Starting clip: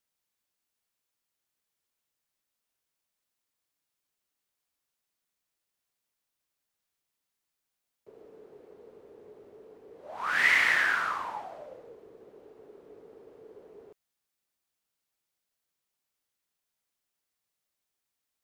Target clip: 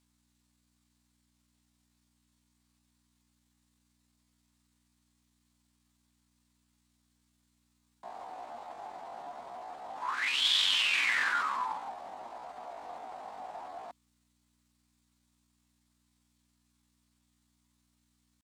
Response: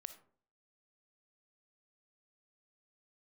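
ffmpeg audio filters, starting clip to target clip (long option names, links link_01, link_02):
-af "asetrate=74167,aresample=44100,atempo=0.594604,areverse,acompressor=threshold=-35dB:ratio=12,areverse,aeval=exprs='val(0)+0.000141*(sin(2*PI*60*n/s)+sin(2*PI*2*60*n/s)/2+sin(2*PI*3*60*n/s)/3+sin(2*PI*4*60*n/s)/4+sin(2*PI*5*60*n/s)/5)':channel_layout=same,equalizer=frequency=250:width_type=o:width=1:gain=10,equalizer=frequency=1000:width_type=o:width=1:gain=11,equalizer=frequency=2000:width_type=o:width=1:gain=5,equalizer=frequency=4000:width_type=o:width=1:gain=9,equalizer=frequency=8000:width_type=o:width=1:gain=11"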